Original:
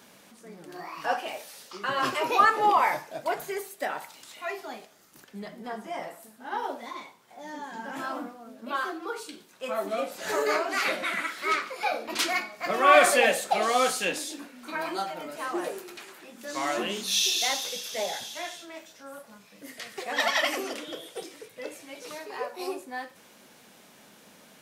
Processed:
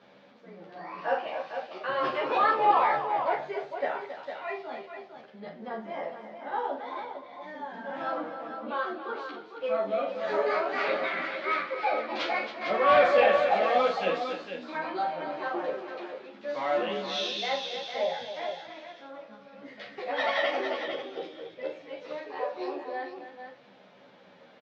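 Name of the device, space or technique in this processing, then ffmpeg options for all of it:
barber-pole flanger into a guitar amplifier: -filter_complex "[0:a]asplit=2[link_01][link_02];[link_02]adelay=11.9,afreqshift=-0.3[link_03];[link_01][link_03]amix=inputs=2:normalize=1,asoftclip=type=tanh:threshold=-18dB,lowpass=frequency=7300:width=0.5412,lowpass=frequency=7300:width=1.3066,highpass=77,equalizer=frequency=540:width_type=q:width=4:gain=8,equalizer=frequency=810:width_type=q:width=4:gain=3,equalizer=frequency=2800:width_type=q:width=4:gain=-3,lowpass=frequency=3800:width=0.5412,lowpass=frequency=3800:width=1.3066,asettb=1/sr,asplit=3[link_04][link_05][link_06];[link_04]atrim=end=8.004[link_07];[link_05]atrim=start=8:end=8.5,asetpts=PTS-STARTPTS,afade=type=in:duration=0.004:curve=qsin,afade=type=out:start_time=0.496:duration=0.004:curve=qsin,aecho=1:1:6.1:0.87,atrim=end_sample=22050[link_08];[link_06]atrim=start=8.496[link_09];[link_07][link_08]acrossfade=duration=0.004:curve1=hsin:curve2=qsin[link_10];[link_10][link_09]acrossfade=duration=0.004:curve1=qsin:curve2=hsin,aecho=1:1:41|274|455:0.398|0.299|0.398"

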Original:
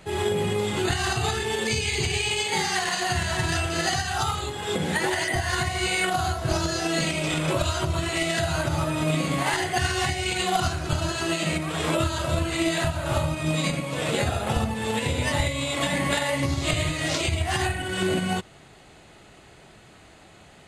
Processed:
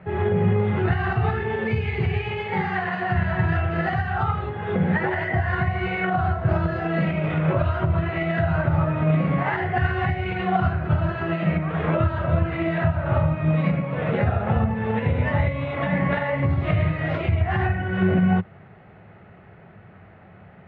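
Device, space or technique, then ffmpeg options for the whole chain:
bass cabinet: -af "highpass=66,equalizer=frequency=99:width_type=q:width=4:gain=10,equalizer=frequency=180:width_type=q:width=4:gain=8,equalizer=frequency=300:width_type=q:width=4:gain=-7,equalizer=frequency=1000:width_type=q:width=4:gain=-3,lowpass=frequency=2000:width=0.5412,lowpass=frequency=2000:width=1.3066,volume=2.5dB"

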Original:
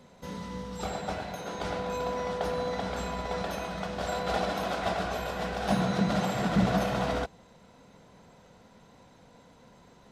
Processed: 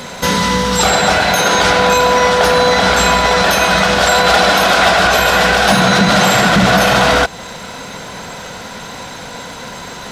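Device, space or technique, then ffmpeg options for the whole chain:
mastering chain: -af "equalizer=frequency=1500:width_type=o:width=0.2:gain=4,acompressor=threshold=-38dB:ratio=1.5,asoftclip=type=tanh:threshold=-23.5dB,tiltshelf=frequency=870:gain=-6,asoftclip=type=hard:threshold=-26dB,alimiter=level_in=29.5dB:limit=-1dB:release=50:level=0:latency=1,volume=-1.5dB"

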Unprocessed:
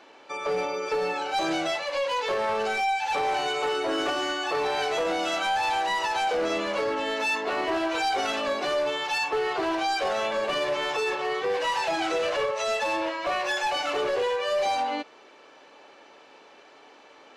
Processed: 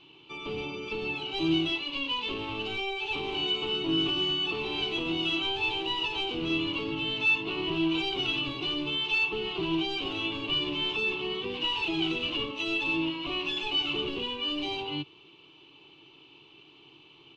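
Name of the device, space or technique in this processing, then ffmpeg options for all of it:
octave pedal: -filter_complex "[0:a]asplit=2[link_01][link_02];[link_02]asetrate=22050,aresample=44100,atempo=2,volume=-9dB[link_03];[link_01][link_03]amix=inputs=2:normalize=0,firequalizer=gain_entry='entry(140,0);entry(220,-17);entry(330,-1);entry(550,-27);entry(1000,-13);entry(1700,-27);entry(2800,3);entry(5100,-18);entry(9100,-26)':delay=0.05:min_phase=1,volume=5dB"

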